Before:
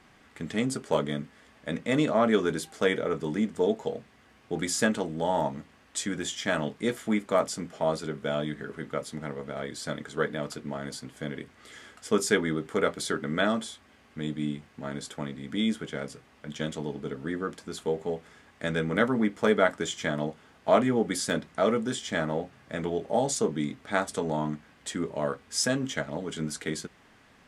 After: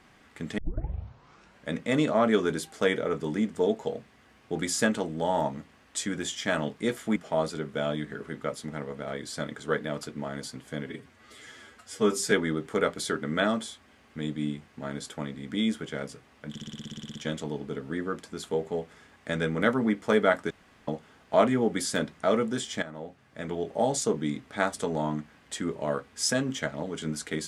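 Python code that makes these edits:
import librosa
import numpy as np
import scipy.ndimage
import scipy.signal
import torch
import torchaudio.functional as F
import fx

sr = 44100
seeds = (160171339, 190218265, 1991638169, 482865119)

y = fx.edit(x, sr, fx.tape_start(start_s=0.58, length_s=1.11),
    fx.cut(start_s=7.16, length_s=0.49),
    fx.stretch_span(start_s=11.35, length_s=0.97, factor=1.5),
    fx.stutter(start_s=16.5, slice_s=0.06, count=12),
    fx.room_tone_fill(start_s=19.85, length_s=0.37),
    fx.fade_in_from(start_s=22.17, length_s=0.99, floor_db=-15.0), tone=tone)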